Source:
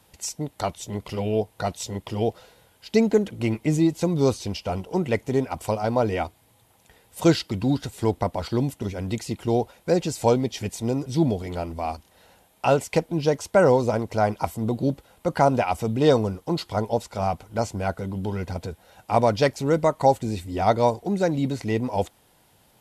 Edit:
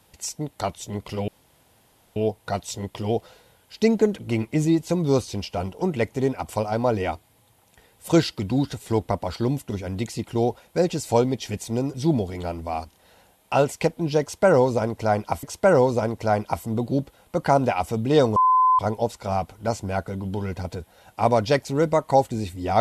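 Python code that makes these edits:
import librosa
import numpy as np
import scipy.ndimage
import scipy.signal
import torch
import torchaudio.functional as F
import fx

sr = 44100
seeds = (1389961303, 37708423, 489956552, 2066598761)

y = fx.edit(x, sr, fx.insert_room_tone(at_s=1.28, length_s=0.88),
    fx.repeat(start_s=13.34, length_s=1.21, count=2),
    fx.bleep(start_s=16.27, length_s=0.43, hz=1020.0, db=-14.0), tone=tone)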